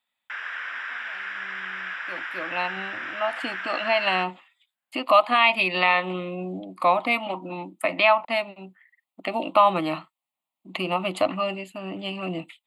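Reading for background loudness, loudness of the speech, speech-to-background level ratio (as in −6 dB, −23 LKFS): −32.0 LKFS, −24.0 LKFS, 8.0 dB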